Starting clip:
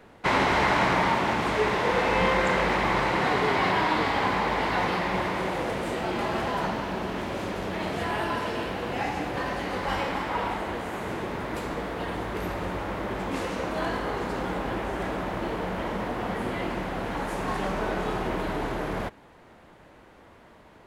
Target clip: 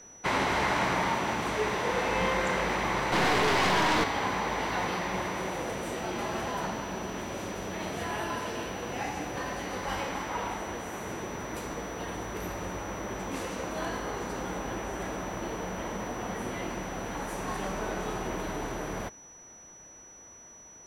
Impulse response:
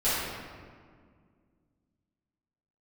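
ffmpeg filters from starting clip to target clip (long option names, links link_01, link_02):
-filter_complex "[0:a]highshelf=frequency=7900:gain=9,asettb=1/sr,asplit=3[link_01][link_02][link_03];[link_01]atrim=end=3.124[link_04];[link_02]atrim=start=3.12:end=4.04,asetpts=PTS-STARTPTS,afade=type=in:duration=0.004:curve=qsin,afade=type=out:start_time=0.916:duration=0.004:curve=qsin,aeval=exprs='0.251*(cos(1*acos(clip(val(0)/0.251,-1,1)))-cos(1*PI/2))+0.0562*(cos(3*acos(clip(val(0)/0.251,-1,1)))-cos(3*PI/2))+0.112*(cos(5*acos(clip(val(0)/0.251,-1,1)))-cos(5*PI/2))+0.0355*(cos(6*acos(clip(val(0)/0.251,-1,1)))-cos(6*PI/2))':channel_layout=same[link_05];[link_03]atrim=start=4.036[link_06];[link_04][link_05]acrossfade=duration=0.004:curve1=hsin:curve2=qsin[link_07];[link_07][link_06]acrossfade=duration=0.004:curve1=qsin:curve2=hsin,aeval=exprs='val(0)+0.00631*sin(2*PI*5900*n/s)':channel_layout=same,volume=-5dB"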